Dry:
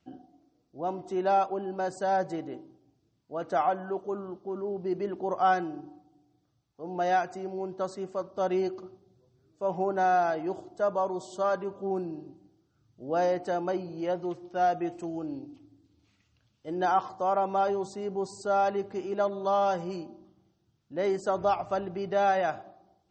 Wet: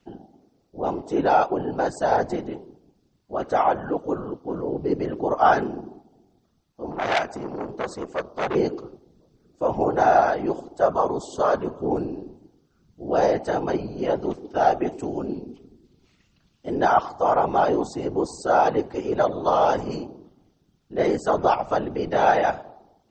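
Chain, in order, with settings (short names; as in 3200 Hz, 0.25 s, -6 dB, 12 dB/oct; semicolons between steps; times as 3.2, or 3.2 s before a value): whisperiser; 6.9–8.55 core saturation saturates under 2300 Hz; gain +6.5 dB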